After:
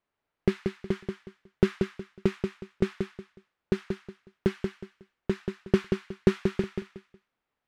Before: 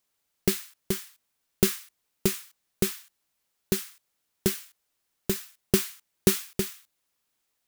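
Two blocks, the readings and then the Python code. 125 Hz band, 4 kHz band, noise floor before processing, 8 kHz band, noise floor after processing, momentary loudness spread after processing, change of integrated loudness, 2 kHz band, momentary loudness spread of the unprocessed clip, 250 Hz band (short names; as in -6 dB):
+2.0 dB, -10.0 dB, -78 dBFS, under -20 dB, under -85 dBFS, 13 LU, -2.0 dB, -1.5 dB, 12 LU, +2.0 dB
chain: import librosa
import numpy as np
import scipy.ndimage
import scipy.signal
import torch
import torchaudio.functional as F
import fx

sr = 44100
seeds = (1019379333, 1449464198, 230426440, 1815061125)

p1 = scipy.signal.sosfilt(scipy.signal.butter(2, 1900.0, 'lowpass', fs=sr, output='sos'), x)
p2 = p1 + fx.echo_feedback(p1, sr, ms=183, feedback_pct=26, wet_db=-5.5, dry=0)
y = p2 * 10.0 ** (1.0 / 20.0)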